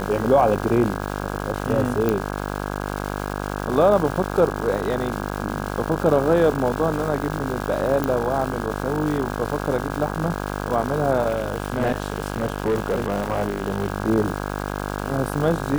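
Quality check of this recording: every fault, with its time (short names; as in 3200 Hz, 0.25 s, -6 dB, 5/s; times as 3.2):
buzz 50 Hz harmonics 33 -28 dBFS
crackle 560/s -28 dBFS
2.09 pop -8 dBFS
8.04 pop -9 dBFS
11.28–13.9 clipped -16.5 dBFS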